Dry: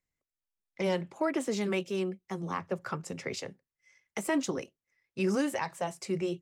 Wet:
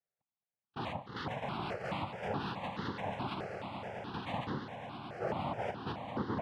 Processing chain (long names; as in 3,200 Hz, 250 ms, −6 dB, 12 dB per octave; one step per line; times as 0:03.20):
source passing by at 0:02.36, 17 m/s, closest 16 metres
Butterworth high-pass 210 Hz
phaser with its sweep stopped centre 480 Hz, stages 6
hollow resonant body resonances 490/730 Hz, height 10 dB, ringing for 25 ms
wave folding −38 dBFS
cochlear-implant simulation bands 2
high-frequency loss of the air 400 metres
on a send: echo that builds up and dies away 109 ms, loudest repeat 8, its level −13.5 dB
on the sum: step-sequenced phaser 4.7 Hz 990–2,400 Hz
level +11.5 dB